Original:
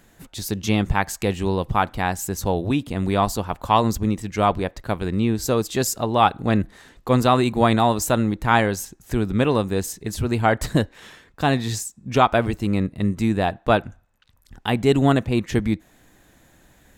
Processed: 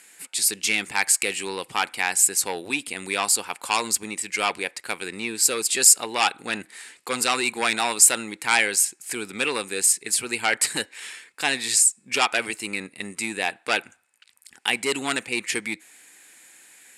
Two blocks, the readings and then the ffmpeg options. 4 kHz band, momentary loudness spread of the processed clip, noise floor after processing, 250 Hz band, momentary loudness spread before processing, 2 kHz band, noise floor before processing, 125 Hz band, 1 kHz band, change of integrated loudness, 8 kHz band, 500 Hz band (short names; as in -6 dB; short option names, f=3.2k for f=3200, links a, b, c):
+5.0 dB, 14 LU, -60 dBFS, -13.5 dB, 9 LU, +4.0 dB, -57 dBFS, -24.0 dB, -6.5 dB, -0.5 dB, +13.0 dB, -9.0 dB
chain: -af "aeval=exprs='0.75*(cos(1*acos(clip(val(0)/0.75,-1,1)))-cos(1*PI/2))+0.168*(cos(5*acos(clip(val(0)/0.75,-1,1)))-cos(5*PI/2))':c=same,crystalizer=i=8.5:c=0,highpass=390,equalizer=f=630:t=q:w=4:g=-9,equalizer=f=1.1k:t=q:w=4:g=-4,equalizer=f=2.3k:t=q:w=4:g=7,equalizer=f=3.6k:t=q:w=4:g=-6,equalizer=f=6.1k:t=q:w=4:g=-9,equalizer=f=9.2k:t=q:w=4:g=4,lowpass=f=9.6k:w=0.5412,lowpass=f=9.6k:w=1.3066,volume=-10.5dB"